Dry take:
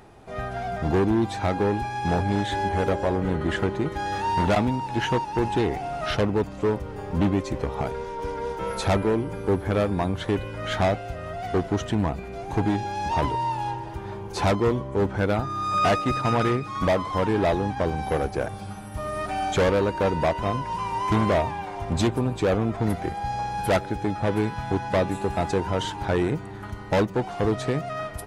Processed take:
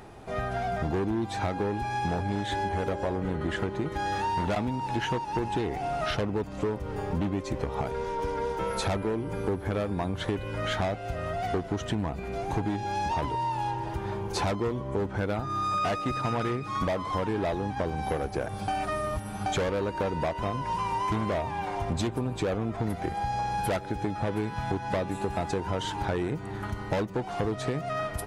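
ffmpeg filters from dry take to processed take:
-filter_complex "[0:a]asplit=3[a][b][c];[a]atrim=end=18.682[d];[b]atrim=start=18.678:end=19.462,asetpts=PTS-STARTPTS,areverse[e];[c]atrim=start=19.458[f];[d][e]acrossfade=d=0.004:c1=hsin:c2=hsin[g];[g][f]acrossfade=d=0.004:c1=hsin:c2=hsin,acompressor=threshold=-29dB:ratio=6,volume=2.5dB"

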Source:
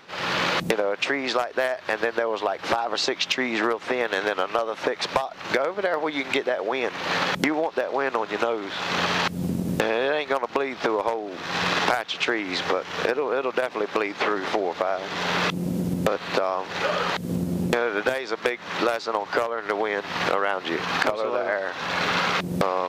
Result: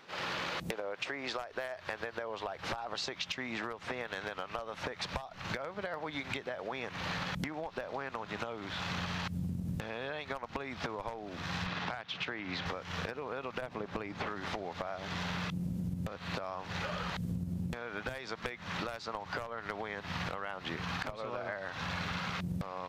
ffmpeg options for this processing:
-filter_complex "[0:a]asettb=1/sr,asplit=3[a][b][c];[a]atrim=end=11.664[d];[b]atrim=start=11.66:end=12.66,asetpts=PTS-STARTPTS,afade=t=in:d=0.004:c=qsin,afade=t=out:st=0.996:d=0.004:c=qsin,highpass=100,lowpass=4.5k[e];[c]atrim=start=12.656[f];[d][e]acrossfade=d=0.004:c1=hsin:c2=qsin[g];[g][f]acrossfade=d=0.004:c1=qsin:c2=hsin,asettb=1/sr,asplit=3[h][i][j];[h]atrim=end=13.614[k];[i]atrim=start=13.61:end=14.27,asetpts=PTS-STARTPTS,afade=t=in:d=0.004:c=qsin,afade=t=out:st=0.656:d=0.004:c=qsin,tiltshelf=f=970:g=4.5[l];[j]atrim=start=14.266[m];[k][l]acrossfade=d=0.004:c1=hsin:c2=qsin[n];[n][m]acrossfade=d=0.004:c1=qsin:c2=hsin,asubboost=boost=11:cutoff=110,acompressor=threshold=-27dB:ratio=6,volume=-7dB"

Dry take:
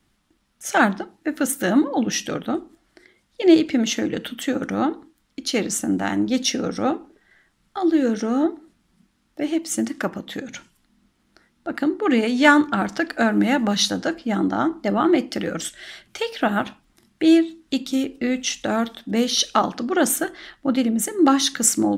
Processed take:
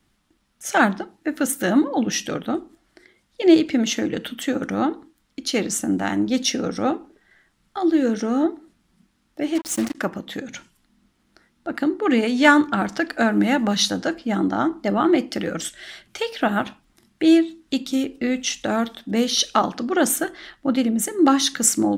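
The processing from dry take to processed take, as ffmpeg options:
-filter_complex "[0:a]asettb=1/sr,asplit=3[a][b][c];[a]atrim=end=9.554[d];[b]atrim=start=9.55:end=9.95,asetpts=PTS-STARTPTS,afade=t=in:d=0.004:c=qsin,afade=t=out:st=0.396:d=0.004:c=qsin,acrusher=bits=4:mix=0:aa=0.5[e];[c]atrim=start=9.946[f];[d][e]acrossfade=d=0.004:c1=hsin:c2=qsin[g];[g][f]acrossfade=d=0.004:c1=qsin:c2=hsin"

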